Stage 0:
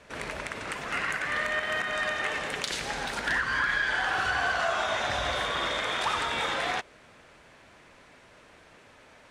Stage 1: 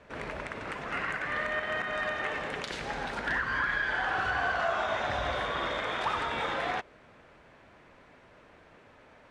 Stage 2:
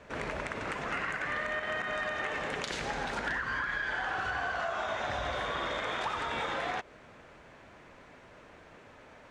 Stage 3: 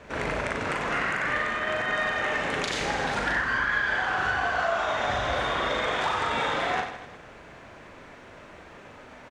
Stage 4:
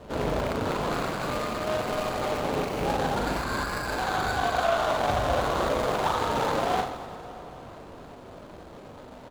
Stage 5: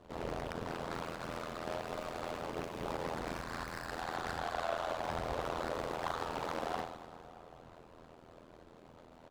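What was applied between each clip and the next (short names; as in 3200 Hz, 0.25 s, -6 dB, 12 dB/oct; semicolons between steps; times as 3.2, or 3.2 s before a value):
LPF 1700 Hz 6 dB/oct
bell 6800 Hz +4.5 dB 0.6 oct; compressor, threshold -33 dBFS, peak gain reduction 8.5 dB; gain +2.5 dB
reverse bouncing-ball echo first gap 40 ms, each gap 1.3×, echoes 5; gain +5 dB
median filter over 25 samples; on a send at -14.5 dB: reverb RT60 4.8 s, pre-delay 0.141 s; on the sum: gain +4.5 dB
AM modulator 83 Hz, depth 85%; Doppler distortion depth 0.92 ms; gain -8 dB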